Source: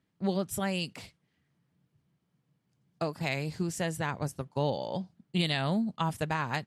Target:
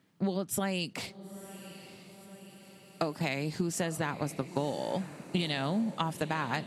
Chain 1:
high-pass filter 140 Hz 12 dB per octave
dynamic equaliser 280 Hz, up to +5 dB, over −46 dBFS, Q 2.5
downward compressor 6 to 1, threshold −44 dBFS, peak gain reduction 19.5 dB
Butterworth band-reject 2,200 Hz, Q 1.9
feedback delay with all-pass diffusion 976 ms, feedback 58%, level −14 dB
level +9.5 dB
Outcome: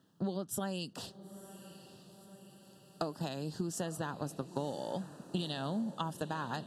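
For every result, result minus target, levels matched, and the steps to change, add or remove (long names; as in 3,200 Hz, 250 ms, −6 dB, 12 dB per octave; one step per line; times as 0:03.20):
downward compressor: peak gain reduction +5 dB; 2,000 Hz band −4.5 dB
change: downward compressor 6 to 1, threshold −38 dBFS, peak gain reduction 14.5 dB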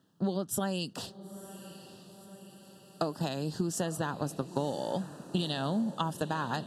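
2,000 Hz band −4.5 dB
remove: Butterworth band-reject 2,200 Hz, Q 1.9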